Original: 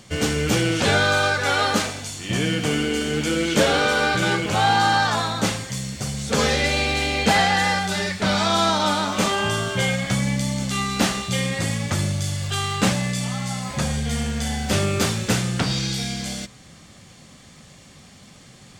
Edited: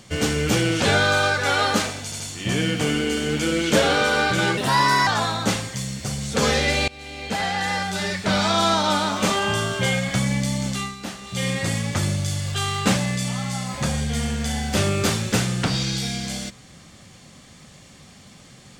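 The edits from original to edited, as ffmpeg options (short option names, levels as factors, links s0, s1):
-filter_complex "[0:a]asplit=8[s0][s1][s2][s3][s4][s5][s6][s7];[s0]atrim=end=2.122[s8];[s1]atrim=start=2.038:end=2.122[s9];[s2]atrim=start=2.038:end=4.414[s10];[s3]atrim=start=4.41:end=5.03,asetpts=PTS-STARTPTS,asetrate=54684,aresample=44100[s11];[s4]atrim=start=5.026:end=6.84,asetpts=PTS-STARTPTS,afade=t=out:st=1.81:d=0.004:c=hsin:silence=0.0668344[s12];[s5]atrim=start=6.84:end=10.92,asetpts=PTS-STARTPTS,afade=t=in:d=1.37:silence=0.0668344,afade=t=out:st=3.82:d=0.26:silence=0.237137[s13];[s6]atrim=start=10.92:end=11.18,asetpts=PTS-STARTPTS,volume=0.237[s14];[s7]atrim=start=11.18,asetpts=PTS-STARTPTS,afade=t=in:d=0.26:silence=0.237137[s15];[s8][s9]acrossfade=d=0.004:c1=hsin:c2=hsin[s16];[s16][s10]acrossfade=d=0.004:c1=hsin:c2=hsin[s17];[s17][s11]acrossfade=d=0.004:c1=hsin:c2=hsin[s18];[s12][s13][s14][s15]concat=n=4:v=0:a=1[s19];[s18][s19]acrossfade=d=0.004:c1=hsin:c2=hsin"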